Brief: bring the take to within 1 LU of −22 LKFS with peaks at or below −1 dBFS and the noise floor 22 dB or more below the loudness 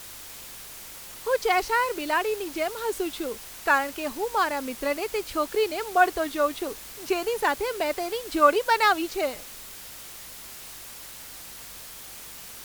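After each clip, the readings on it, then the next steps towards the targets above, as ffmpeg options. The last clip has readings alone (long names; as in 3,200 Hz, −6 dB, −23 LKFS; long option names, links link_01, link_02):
mains hum 50 Hz; hum harmonics up to 200 Hz; level of the hum −58 dBFS; background noise floor −42 dBFS; target noise floor −48 dBFS; integrated loudness −25.5 LKFS; sample peak −6.5 dBFS; target loudness −22.0 LKFS
→ -af "bandreject=frequency=50:width_type=h:width=4,bandreject=frequency=100:width_type=h:width=4,bandreject=frequency=150:width_type=h:width=4,bandreject=frequency=200:width_type=h:width=4"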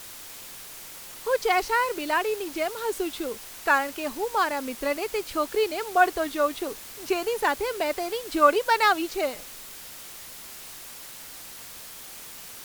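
mains hum none found; background noise floor −42 dBFS; target noise floor −48 dBFS
→ -af "afftdn=noise_reduction=6:noise_floor=-42"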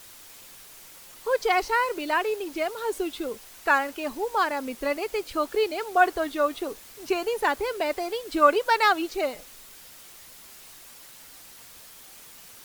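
background noise floor −48 dBFS; integrated loudness −26.0 LKFS; sample peak −7.0 dBFS; target loudness −22.0 LKFS
→ -af "volume=4dB"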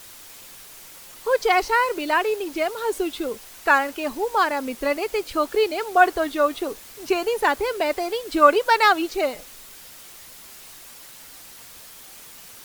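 integrated loudness −22.0 LKFS; sample peak −3.0 dBFS; background noise floor −44 dBFS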